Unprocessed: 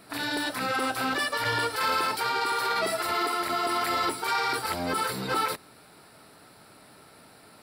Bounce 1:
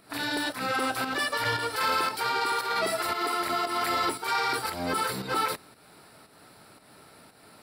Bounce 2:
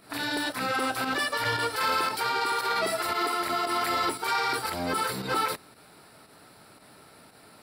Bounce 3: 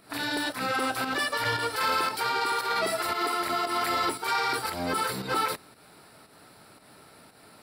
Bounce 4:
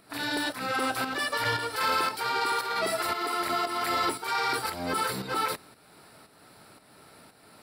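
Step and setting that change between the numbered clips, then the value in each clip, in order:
volume shaper, release: 231 ms, 79 ms, 155 ms, 424 ms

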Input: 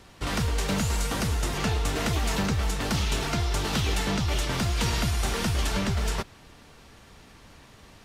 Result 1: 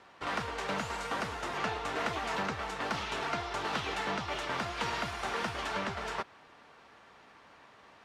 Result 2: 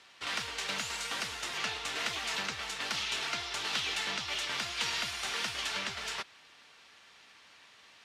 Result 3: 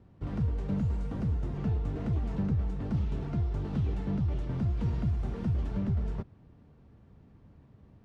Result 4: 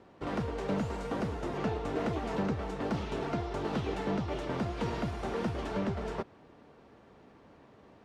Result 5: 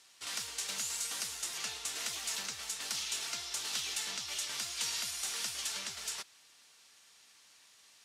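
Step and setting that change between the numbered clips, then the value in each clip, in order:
band-pass filter, frequency: 1.1 kHz, 2.9 kHz, 120 Hz, 420 Hz, 7.7 kHz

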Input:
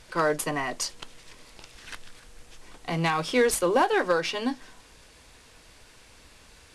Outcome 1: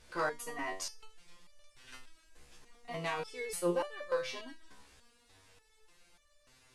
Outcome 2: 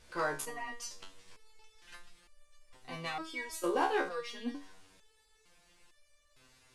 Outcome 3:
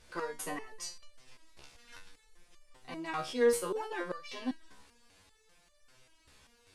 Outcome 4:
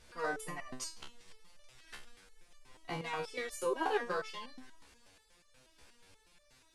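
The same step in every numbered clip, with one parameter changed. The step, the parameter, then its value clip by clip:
resonator arpeggio, rate: 3.4 Hz, 2.2 Hz, 5.1 Hz, 8.3 Hz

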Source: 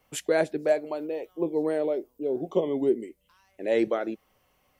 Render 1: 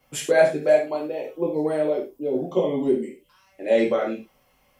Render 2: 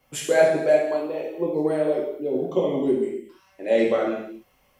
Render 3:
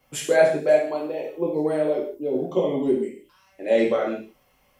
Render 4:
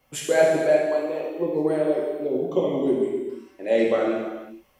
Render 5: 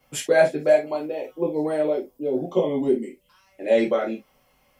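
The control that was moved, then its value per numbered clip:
gated-style reverb, gate: 140 ms, 300 ms, 200 ms, 510 ms, 90 ms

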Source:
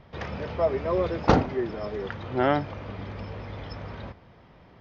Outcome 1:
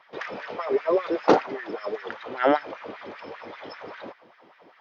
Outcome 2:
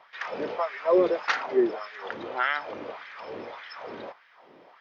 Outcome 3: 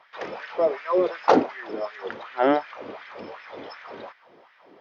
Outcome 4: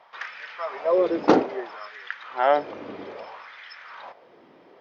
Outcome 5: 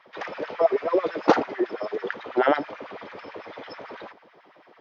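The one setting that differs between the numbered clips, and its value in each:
LFO high-pass, rate: 5.1 Hz, 1.7 Hz, 2.7 Hz, 0.61 Hz, 9.1 Hz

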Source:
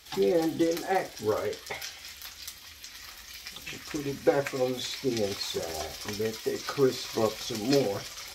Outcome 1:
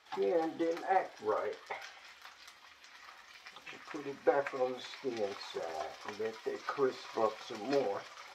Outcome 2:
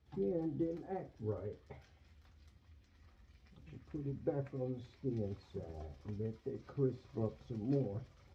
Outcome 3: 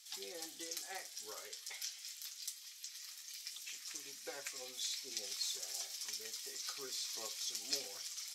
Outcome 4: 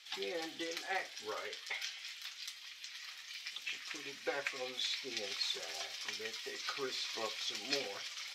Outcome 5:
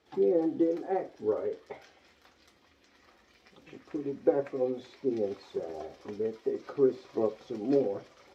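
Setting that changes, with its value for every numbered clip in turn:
band-pass filter, frequency: 970 Hz, 100 Hz, 8 kHz, 2.9 kHz, 370 Hz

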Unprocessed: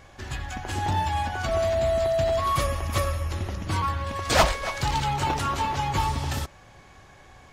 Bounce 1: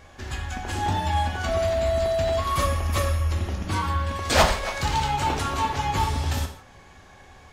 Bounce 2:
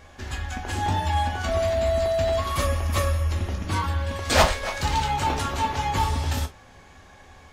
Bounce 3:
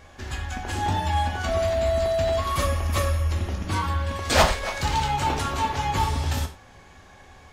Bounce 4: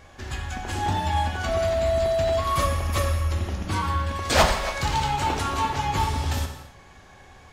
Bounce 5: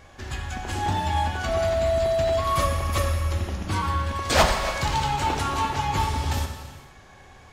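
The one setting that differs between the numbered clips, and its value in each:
gated-style reverb, gate: 190 ms, 80 ms, 130 ms, 310 ms, 510 ms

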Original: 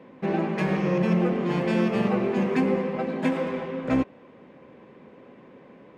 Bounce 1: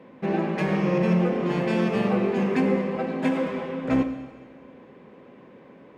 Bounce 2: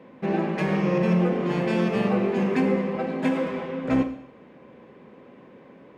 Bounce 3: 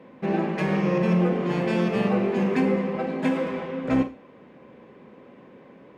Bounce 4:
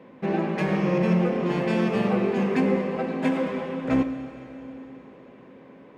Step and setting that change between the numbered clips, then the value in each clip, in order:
Schroeder reverb, RT60: 1.5 s, 0.67 s, 0.3 s, 3.4 s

